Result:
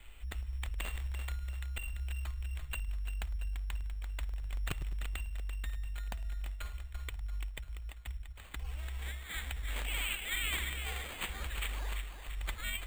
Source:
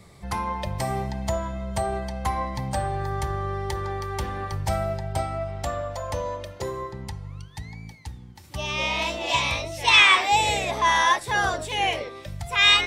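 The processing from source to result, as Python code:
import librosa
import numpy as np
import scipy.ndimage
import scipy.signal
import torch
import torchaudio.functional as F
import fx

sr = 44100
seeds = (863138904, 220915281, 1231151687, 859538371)

p1 = scipy.signal.sosfilt(scipy.signal.cheby2(4, 70, [230.0, 3900.0], 'bandstop', fs=sr, output='sos'), x)
p2 = fx.peak_eq(p1, sr, hz=89.0, db=-11.5, octaves=2.0)
p3 = fx.over_compress(p2, sr, threshold_db=-53.0, ratio=-0.5)
p4 = p2 + (p3 * 10.0 ** (2.0 / 20.0))
p5 = (np.mod(10.0 ** (35.5 / 20.0) * p4 + 1.0, 2.0) - 1.0) / 10.0 ** (35.5 / 20.0)
p6 = fx.lowpass_res(p5, sr, hz=7600.0, q=6.0)
p7 = p6 + fx.echo_split(p6, sr, split_hz=2800.0, low_ms=105, high_ms=340, feedback_pct=52, wet_db=-7.0, dry=0)
p8 = np.repeat(p7[::8], 8)[:len(p7)]
y = p8 * 10.0 ** (6.0 / 20.0)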